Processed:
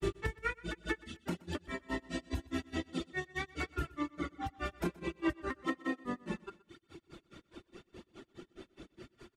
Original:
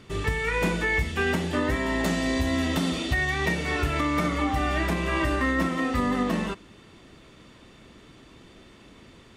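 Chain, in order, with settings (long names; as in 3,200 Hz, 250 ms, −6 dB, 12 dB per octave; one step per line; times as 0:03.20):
reverb reduction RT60 0.84 s
downward compressor, threshold −32 dBFS, peak gain reduction 11 dB
hollow resonant body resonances 350/1,400 Hz, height 12 dB, ringing for 65 ms
granular cloud 132 ms, grains 4.8 per second, pitch spread up and down by 0 semitones
repeating echo 124 ms, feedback 40%, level −21.5 dB
level +1 dB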